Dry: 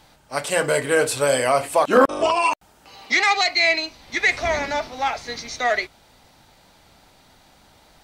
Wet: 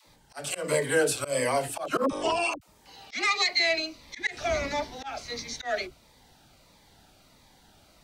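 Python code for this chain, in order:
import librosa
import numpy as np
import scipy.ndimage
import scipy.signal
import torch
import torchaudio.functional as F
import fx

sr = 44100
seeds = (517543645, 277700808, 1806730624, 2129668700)

y = fx.dispersion(x, sr, late='lows', ms=74.0, hz=370.0)
y = fx.auto_swell(y, sr, attack_ms=156.0)
y = fx.notch_cascade(y, sr, direction='falling', hz=1.5)
y = y * librosa.db_to_amplitude(-3.5)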